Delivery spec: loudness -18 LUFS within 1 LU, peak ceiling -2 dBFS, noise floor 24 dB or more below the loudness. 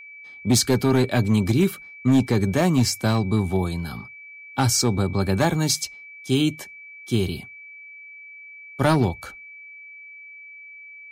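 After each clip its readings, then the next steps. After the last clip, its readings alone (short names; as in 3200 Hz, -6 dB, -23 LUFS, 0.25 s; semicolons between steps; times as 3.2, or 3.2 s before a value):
clipped 0.7%; flat tops at -11.5 dBFS; steady tone 2300 Hz; tone level -40 dBFS; loudness -22.0 LUFS; peak -11.5 dBFS; loudness target -18.0 LUFS
-> clip repair -11.5 dBFS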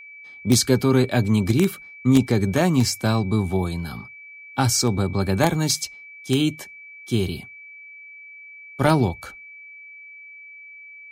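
clipped 0.0%; steady tone 2300 Hz; tone level -40 dBFS
-> notch 2300 Hz, Q 30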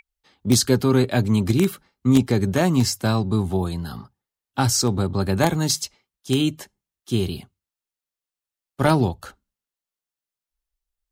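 steady tone none; loudness -21.5 LUFS; peak -2.5 dBFS; loudness target -18.0 LUFS
-> gain +3.5 dB; limiter -2 dBFS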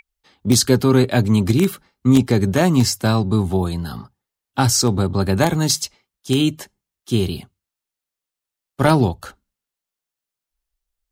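loudness -18.0 LUFS; peak -2.0 dBFS; noise floor -86 dBFS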